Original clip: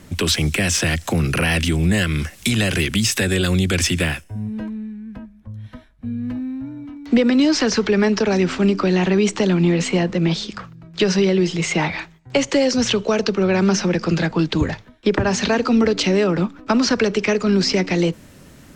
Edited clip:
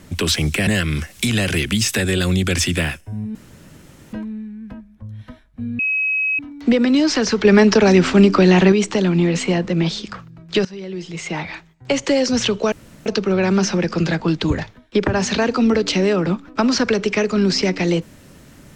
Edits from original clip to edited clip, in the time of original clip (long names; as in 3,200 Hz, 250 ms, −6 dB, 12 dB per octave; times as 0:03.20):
0:00.67–0:01.90: remove
0:04.58: splice in room tone 0.78 s
0:06.24–0:06.84: beep over 2,550 Hz −16.5 dBFS
0:07.90–0:09.17: clip gain +5.5 dB
0:11.10–0:12.58: fade in, from −21.5 dB
0:13.17: splice in room tone 0.34 s